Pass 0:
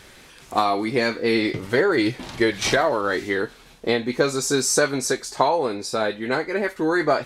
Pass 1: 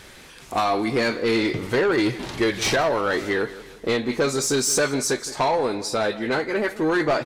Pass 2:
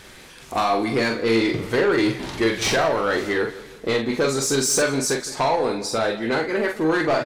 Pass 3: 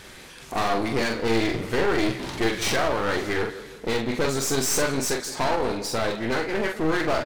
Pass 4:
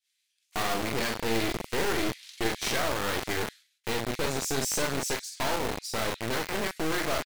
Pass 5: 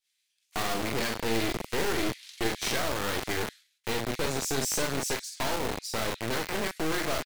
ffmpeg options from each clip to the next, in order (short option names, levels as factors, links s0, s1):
-filter_complex "[0:a]asoftclip=type=tanh:threshold=0.141,asplit=2[s0][s1];[s1]adelay=166,lowpass=f=4500:p=1,volume=0.15,asplit=2[s2][s3];[s3]adelay=166,lowpass=f=4500:p=1,volume=0.49,asplit=2[s4][s5];[s5]adelay=166,lowpass=f=4500:p=1,volume=0.49,asplit=2[s6][s7];[s7]adelay=166,lowpass=f=4500:p=1,volume=0.49[s8];[s0][s2][s4][s6][s8]amix=inputs=5:normalize=0,volume=1.26"
-filter_complex "[0:a]asplit=2[s0][s1];[s1]adelay=44,volume=0.501[s2];[s0][s2]amix=inputs=2:normalize=0"
-af "aeval=exprs='clip(val(0),-1,0.0251)':c=same"
-filter_complex "[0:a]agate=range=0.0224:threshold=0.0316:ratio=3:detection=peak,acrossover=split=2400[s0][s1];[s0]acrusher=bits=3:mix=0:aa=0.000001[s2];[s2][s1]amix=inputs=2:normalize=0,volume=0.531"
-filter_complex "[0:a]acrossover=split=440|3000[s0][s1][s2];[s1]acompressor=threshold=0.0355:ratio=6[s3];[s0][s3][s2]amix=inputs=3:normalize=0"